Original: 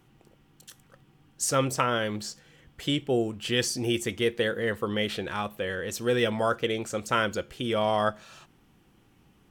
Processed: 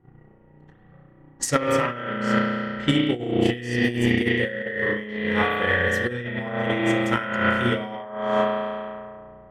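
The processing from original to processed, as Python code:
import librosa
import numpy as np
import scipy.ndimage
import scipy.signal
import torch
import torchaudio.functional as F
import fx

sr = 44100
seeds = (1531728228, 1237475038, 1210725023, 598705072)

y = fx.hpss(x, sr, part='percussive', gain_db=-9)
y = fx.peak_eq(y, sr, hz=1900.0, db=15.0, octaves=0.2)
y = fx.rev_spring(y, sr, rt60_s=2.4, pass_ms=(33,), chirp_ms=75, drr_db=-7.0)
y = fx.over_compress(y, sr, threshold_db=-24.0, ratio=-0.5)
y = fx.transient(y, sr, attack_db=10, sustain_db=-3)
y = fx.env_lowpass(y, sr, base_hz=780.0, full_db=-21.5)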